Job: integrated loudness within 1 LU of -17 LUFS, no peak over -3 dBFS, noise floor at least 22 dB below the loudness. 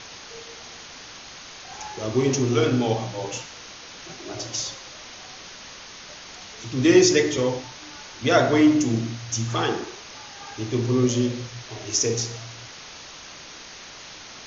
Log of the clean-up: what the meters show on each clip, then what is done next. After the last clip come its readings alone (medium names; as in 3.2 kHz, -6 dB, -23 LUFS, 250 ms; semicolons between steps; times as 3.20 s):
noise floor -42 dBFS; noise floor target -45 dBFS; loudness -22.5 LUFS; peak level -4.5 dBFS; loudness target -17.0 LUFS
-> noise reduction 6 dB, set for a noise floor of -42 dBFS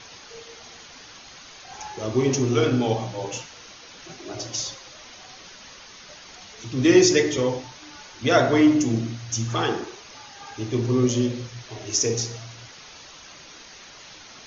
noise floor -45 dBFS; loudness -22.5 LUFS; peak level -4.5 dBFS; loudness target -17.0 LUFS
-> trim +5.5 dB; peak limiter -3 dBFS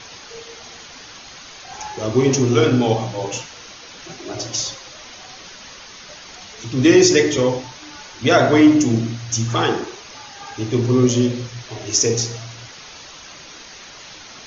loudness -17.5 LUFS; peak level -3.0 dBFS; noise floor -40 dBFS